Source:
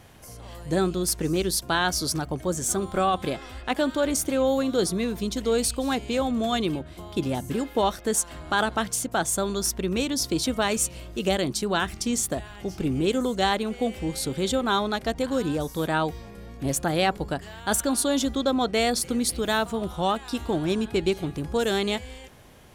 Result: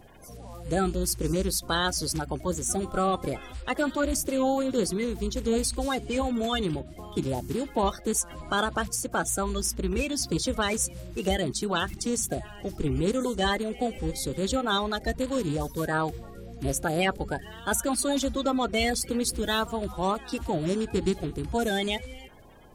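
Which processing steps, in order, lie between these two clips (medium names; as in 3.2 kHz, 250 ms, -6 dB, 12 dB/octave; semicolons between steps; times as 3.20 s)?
coarse spectral quantiser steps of 30 dB; bass shelf 60 Hz +9 dB; trim -2 dB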